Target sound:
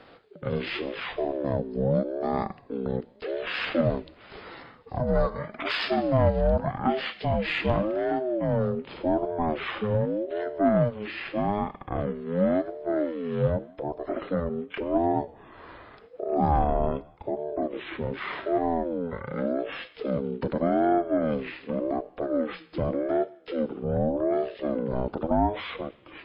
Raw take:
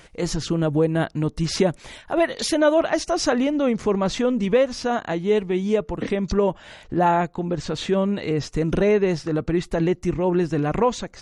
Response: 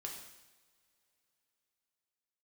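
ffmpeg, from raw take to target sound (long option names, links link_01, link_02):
-filter_complex "[0:a]acrossover=split=280[link_01][link_02];[link_01]acompressor=threshold=-29dB:ratio=6[link_03];[link_03][link_02]amix=inputs=2:normalize=0,asetrate=18846,aresample=44100,aeval=exprs='0.473*(cos(1*acos(clip(val(0)/0.473,-1,1)))-cos(1*PI/2))+0.0299*(cos(3*acos(clip(val(0)/0.473,-1,1)))-cos(3*PI/2))+0.0211*(cos(5*acos(clip(val(0)/0.473,-1,1)))-cos(5*PI/2))+0.00335*(cos(8*acos(clip(val(0)/0.473,-1,1)))-cos(8*PI/2))':channel_layout=same,asplit=2[link_04][link_05];[1:a]atrim=start_sample=2205,lowshelf=frequency=210:gain=-10,highshelf=frequency=2500:gain=10[link_06];[link_05][link_06]afir=irnorm=-1:irlink=0,volume=-10.5dB[link_07];[link_04][link_07]amix=inputs=2:normalize=0,aeval=exprs='val(0)*sin(2*PI*420*n/s+420*0.25/0.86*sin(2*PI*0.86*n/s))':channel_layout=same,volume=-2dB"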